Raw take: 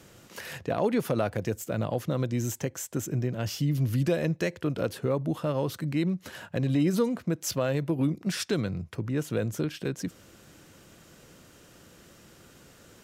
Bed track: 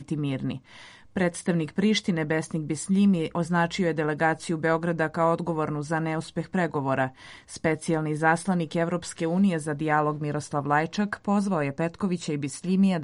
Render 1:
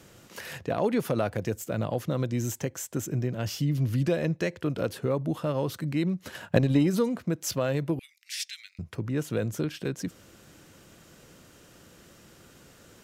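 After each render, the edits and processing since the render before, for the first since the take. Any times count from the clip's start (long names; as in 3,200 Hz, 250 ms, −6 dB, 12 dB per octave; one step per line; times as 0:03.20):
0:03.64–0:04.59: high-shelf EQ 9,000 Hz −7 dB
0:06.26–0:06.87: transient designer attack +11 dB, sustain 0 dB
0:07.99–0:08.79: elliptic high-pass filter 2,000 Hz, stop band 70 dB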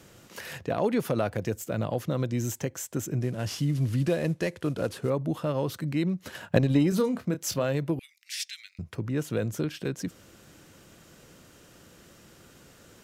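0:03.21–0:05.10: variable-slope delta modulation 64 kbit/s
0:06.89–0:07.64: double-tracking delay 28 ms −9.5 dB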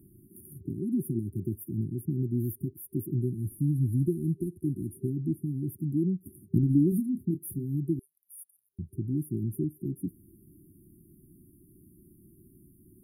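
brick-wall band-stop 390–9,200 Hz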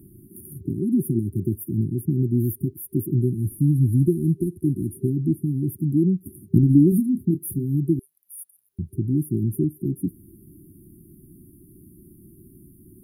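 level +8 dB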